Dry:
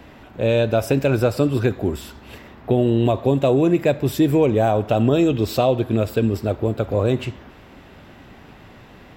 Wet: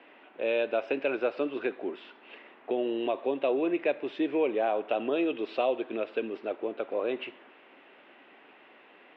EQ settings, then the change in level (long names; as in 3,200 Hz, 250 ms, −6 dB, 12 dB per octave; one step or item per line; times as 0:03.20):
high-pass filter 310 Hz 24 dB per octave
transistor ladder low-pass 3,300 Hz, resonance 45%
high-frequency loss of the air 110 metres
0.0 dB